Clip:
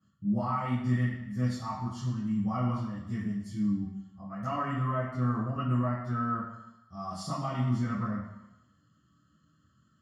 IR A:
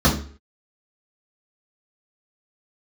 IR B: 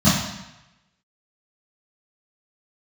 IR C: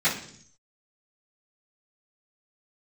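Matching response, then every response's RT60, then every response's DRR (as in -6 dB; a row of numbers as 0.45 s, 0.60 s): B; 0.45 s, 0.95 s, 0.60 s; -7.0 dB, -13.0 dB, -16.0 dB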